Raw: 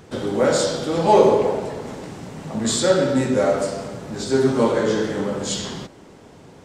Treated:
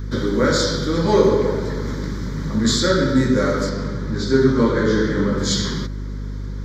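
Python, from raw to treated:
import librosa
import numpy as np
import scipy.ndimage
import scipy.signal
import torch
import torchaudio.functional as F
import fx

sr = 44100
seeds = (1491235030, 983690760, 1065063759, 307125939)

p1 = fx.lowpass(x, sr, hz=4000.0, slope=6, at=(3.69, 5.38))
p2 = fx.rider(p1, sr, range_db=4, speed_s=0.5)
p3 = p1 + (p2 * 10.0 ** (-1.0 / 20.0))
p4 = fx.add_hum(p3, sr, base_hz=50, snr_db=12)
y = fx.fixed_phaser(p4, sr, hz=2700.0, stages=6)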